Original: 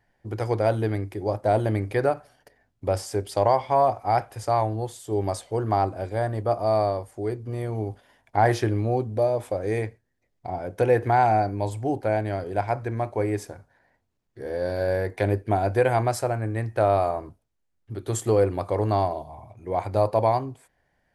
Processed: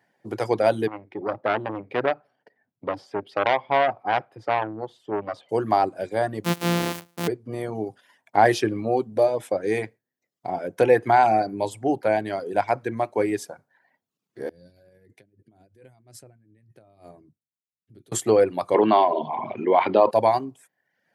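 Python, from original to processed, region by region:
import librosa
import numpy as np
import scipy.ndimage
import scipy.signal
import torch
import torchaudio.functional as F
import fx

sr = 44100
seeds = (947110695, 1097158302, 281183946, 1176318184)

y = fx.chain(x, sr, fx.highpass(hz=69.0, slope=6),
    fx.air_absorb(metres=340.0),
    fx.transformer_sat(knee_hz=1200.0), at=(0.87, 5.49))
y = fx.chain(y, sr, fx.sample_sort(block=256),
    fx.high_shelf(hz=8600.0, db=8.5),
    fx.tube_stage(drive_db=18.0, bias=0.35), at=(6.44, 7.28))
y = fx.chain(y, sr, fx.tone_stack(knobs='10-0-1'),
    fx.over_compress(threshold_db=-48.0, ratio=-1.0), at=(14.49, 18.12))
y = fx.chain(y, sr, fx.cabinet(low_hz=210.0, low_slope=12, high_hz=3700.0, hz=(230.0, 380.0, 1000.0, 2100.0, 3100.0), db=(7, 6, 6, 4, 9)),
    fx.env_flatten(amount_pct=50), at=(18.74, 20.11))
y = fx.dereverb_blind(y, sr, rt60_s=0.71)
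y = scipy.signal.sosfilt(scipy.signal.butter(4, 150.0, 'highpass', fs=sr, output='sos'), y)
y = fx.dynamic_eq(y, sr, hz=3200.0, q=1.2, threshold_db=-46.0, ratio=4.0, max_db=4)
y = y * librosa.db_to_amplitude(3.5)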